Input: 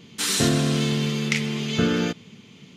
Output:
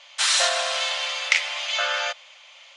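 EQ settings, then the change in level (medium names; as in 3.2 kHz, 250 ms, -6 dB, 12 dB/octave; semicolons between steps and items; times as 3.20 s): brick-wall FIR band-pass 520–11000 Hz; distance through air 52 m; +6.5 dB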